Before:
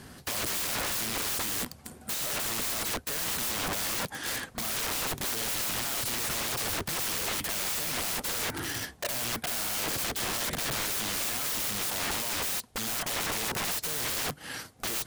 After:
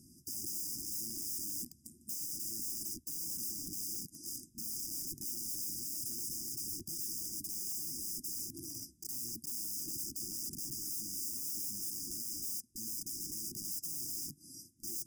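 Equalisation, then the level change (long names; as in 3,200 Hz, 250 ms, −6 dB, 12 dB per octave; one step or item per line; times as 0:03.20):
linear-phase brick-wall band-stop 370–4,800 Hz
low-shelf EQ 170 Hz −10 dB
−6.5 dB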